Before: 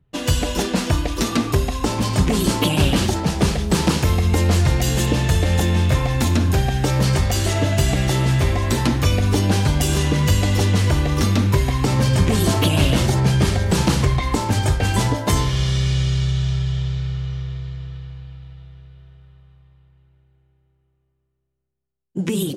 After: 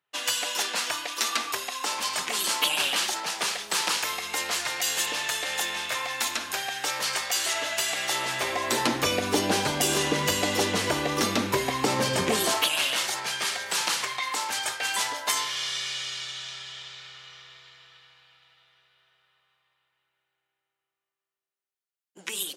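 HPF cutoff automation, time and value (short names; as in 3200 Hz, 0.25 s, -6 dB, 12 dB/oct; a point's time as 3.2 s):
7.93 s 1100 Hz
9 s 360 Hz
12.29 s 360 Hz
12.71 s 1200 Hz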